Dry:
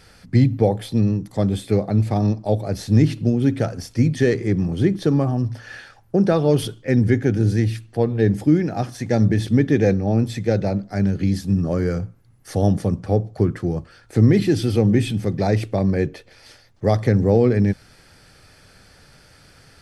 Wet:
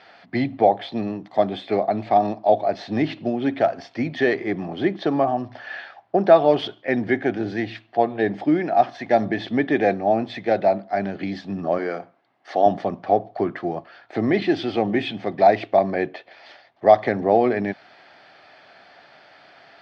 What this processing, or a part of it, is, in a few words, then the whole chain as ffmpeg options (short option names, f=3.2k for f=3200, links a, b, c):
phone earpiece: -filter_complex "[0:a]asettb=1/sr,asplit=3[a][b][c];[a]atrim=end=11.784[d];[b]atrim=start=11.78:end=12.66,asetpts=PTS-STARTPTS,afade=t=in:d=0.004:c=qsin,afade=t=out:st=0.876:d=0.004:c=qsin,highpass=240[e];[c]atrim=start=12.656[f];[d][e]acrossfade=d=0.004:c1=hsin:c2=qsin[g];[g][f]acrossfade=d=0.004:c1=qsin:c2=hsin,highpass=440,equalizer=f=480:t=q:w=4:g=-9,equalizer=f=690:t=q:w=4:g=10,equalizer=f=1.4k:t=q:w=4:g=-4,equalizer=f=2.6k:t=q:w=4:g=-3,lowpass=f=3.5k:w=0.5412,lowpass=f=3.5k:w=1.3066,volume=5.5dB"